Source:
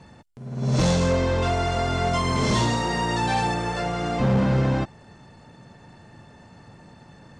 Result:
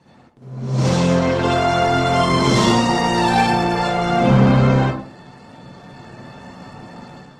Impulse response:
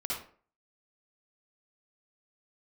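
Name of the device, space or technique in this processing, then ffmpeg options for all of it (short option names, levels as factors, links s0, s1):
far-field microphone of a smart speaker: -filter_complex "[1:a]atrim=start_sample=2205[s0];[0:a][s0]afir=irnorm=-1:irlink=0,highpass=130,dynaudnorm=f=710:g=3:m=3.16,volume=0.891" -ar 48000 -c:a libopus -b:a 16k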